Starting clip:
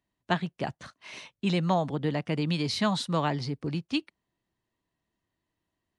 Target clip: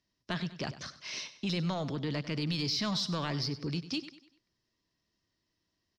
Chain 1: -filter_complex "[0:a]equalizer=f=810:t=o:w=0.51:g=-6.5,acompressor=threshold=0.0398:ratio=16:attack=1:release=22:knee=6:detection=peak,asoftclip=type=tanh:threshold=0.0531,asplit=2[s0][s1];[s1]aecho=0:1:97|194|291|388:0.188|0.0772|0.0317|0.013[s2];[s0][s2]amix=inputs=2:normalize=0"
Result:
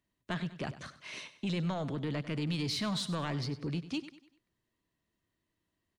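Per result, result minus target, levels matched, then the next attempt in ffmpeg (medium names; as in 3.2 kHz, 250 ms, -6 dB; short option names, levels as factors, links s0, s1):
saturation: distortion +11 dB; 4 kHz band -3.0 dB
-filter_complex "[0:a]equalizer=f=810:t=o:w=0.51:g=-6.5,acompressor=threshold=0.0398:ratio=16:attack=1:release=22:knee=6:detection=peak,asoftclip=type=tanh:threshold=0.119,asplit=2[s0][s1];[s1]aecho=0:1:97|194|291|388:0.188|0.0772|0.0317|0.013[s2];[s0][s2]amix=inputs=2:normalize=0"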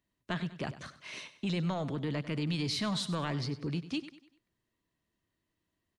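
4 kHz band -3.0 dB
-filter_complex "[0:a]lowpass=f=5300:t=q:w=6.4,equalizer=f=810:t=o:w=0.51:g=-6.5,acompressor=threshold=0.0398:ratio=16:attack=1:release=22:knee=6:detection=peak,asoftclip=type=tanh:threshold=0.119,asplit=2[s0][s1];[s1]aecho=0:1:97|194|291|388:0.188|0.0772|0.0317|0.013[s2];[s0][s2]amix=inputs=2:normalize=0"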